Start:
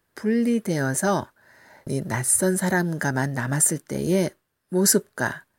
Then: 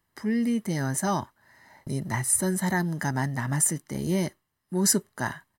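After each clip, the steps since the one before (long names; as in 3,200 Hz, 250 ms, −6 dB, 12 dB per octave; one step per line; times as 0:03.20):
comb filter 1 ms, depth 49%
level −4.5 dB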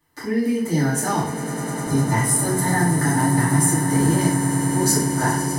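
downward compressor 2.5 to 1, threshold −28 dBFS, peak gain reduction 7.5 dB
echo that builds up and dies away 101 ms, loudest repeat 8, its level −13.5 dB
feedback delay network reverb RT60 0.59 s, low-frequency decay 0.85×, high-frequency decay 0.8×, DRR −9.5 dB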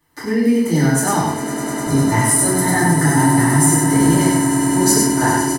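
single-tap delay 98 ms −4 dB
level +3.5 dB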